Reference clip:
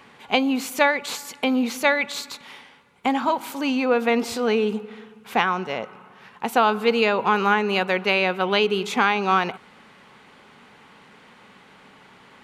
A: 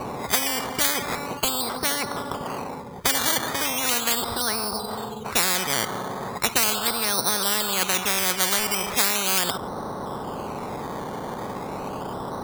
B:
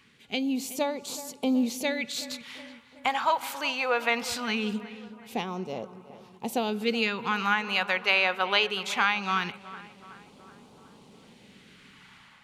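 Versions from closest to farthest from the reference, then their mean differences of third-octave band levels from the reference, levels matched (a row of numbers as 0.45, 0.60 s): B, A; 5.0, 16.0 dB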